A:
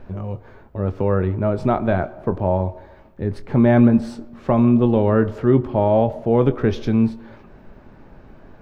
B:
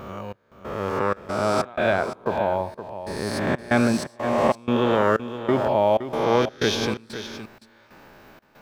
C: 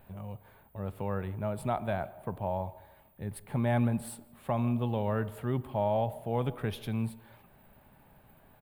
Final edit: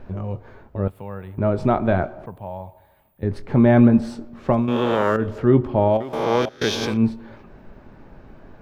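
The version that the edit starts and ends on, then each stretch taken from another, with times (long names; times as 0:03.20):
A
0:00.88–0:01.38: punch in from C
0:02.26–0:03.23: punch in from C
0:04.62–0:05.21: punch in from B, crossfade 0.24 s
0:05.96–0:06.96: punch in from B, crossfade 0.16 s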